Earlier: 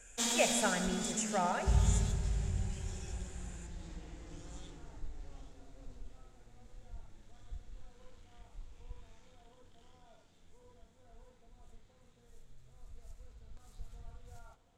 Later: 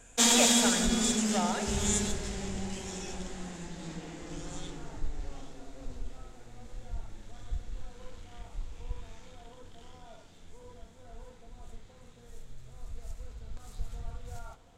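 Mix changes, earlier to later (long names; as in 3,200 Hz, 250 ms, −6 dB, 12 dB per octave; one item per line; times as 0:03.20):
first sound +10.5 dB
second sound: add spectral tilt +2 dB per octave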